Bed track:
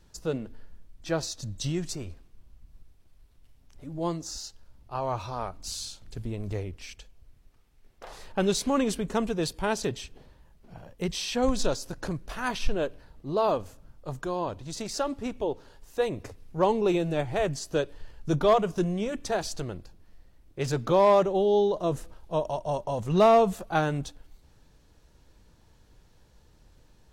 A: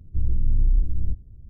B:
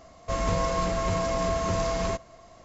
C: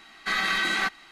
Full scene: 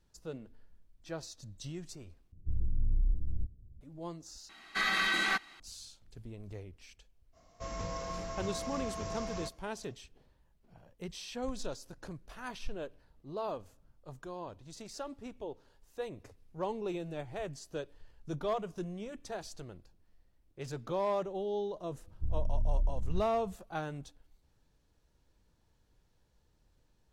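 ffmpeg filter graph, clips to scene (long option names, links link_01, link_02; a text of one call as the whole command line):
ffmpeg -i bed.wav -i cue0.wav -i cue1.wav -i cue2.wav -filter_complex "[1:a]asplit=2[link_01][link_02];[0:a]volume=-12.5dB[link_03];[2:a]equalizer=frequency=5600:width_type=o:width=0.24:gain=8[link_04];[link_03]asplit=3[link_05][link_06][link_07];[link_05]atrim=end=2.324[link_08];[link_01]atrim=end=1.49,asetpts=PTS-STARTPTS,volume=-10dB[link_09];[link_06]atrim=start=3.806:end=4.494[link_10];[3:a]atrim=end=1.11,asetpts=PTS-STARTPTS,volume=-4.5dB[link_11];[link_07]atrim=start=5.596[link_12];[link_04]atrim=end=2.64,asetpts=PTS-STARTPTS,volume=-13dB,afade=type=in:duration=0.05,afade=type=out:start_time=2.59:duration=0.05,adelay=7320[link_13];[link_02]atrim=end=1.49,asetpts=PTS-STARTPTS,volume=-10.5dB,afade=type=in:duration=0.004:curve=hsin,afade=type=out:start_time=1.486:duration=0.004:curve=hsin,adelay=22070[link_14];[link_08][link_09]acrossfade=duration=0.004:curve1=hsin:curve2=hsin[link_15];[link_15][link_10]acrossfade=duration=0.004:curve1=hsin:curve2=hsin[link_16];[link_16][link_11]acrossfade=duration=0.004:curve1=hsin:curve2=hsin[link_17];[link_17][link_12]acrossfade=duration=0.004:curve1=hsin:curve2=hsin[link_18];[link_18][link_13][link_14]amix=inputs=3:normalize=0" out.wav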